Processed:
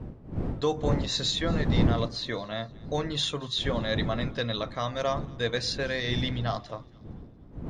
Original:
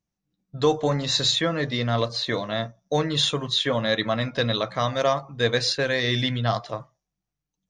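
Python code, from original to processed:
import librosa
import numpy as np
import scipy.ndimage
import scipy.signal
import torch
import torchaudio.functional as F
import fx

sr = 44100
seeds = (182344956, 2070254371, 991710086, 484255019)

y = fx.dmg_wind(x, sr, seeds[0], corner_hz=210.0, level_db=-26.0)
y = fx.echo_thinned(y, sr, ms=232, feedback_pct=47, hz=1000.0, wet_db=-23)
y = y * 10.0 ** (-6.5 / 20.0)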